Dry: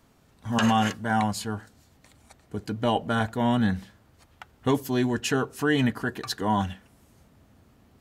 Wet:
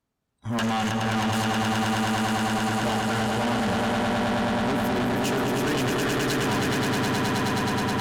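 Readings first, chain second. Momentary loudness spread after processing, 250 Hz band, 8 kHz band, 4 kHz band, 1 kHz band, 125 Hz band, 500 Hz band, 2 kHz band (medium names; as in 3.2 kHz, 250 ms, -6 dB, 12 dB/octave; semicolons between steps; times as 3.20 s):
1 LU, +2.0 dB, +6.0 dB, +5.5 dB, +3.5 dB, +2.5 dB, +3.5 dB, +5.0 dB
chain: echo with a slow build-up 106 ms, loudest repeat 8, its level -4.5 dB; valve stage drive 27 dB, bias 0.5; spectral noise reduction 22 dB; trim +4.5 dB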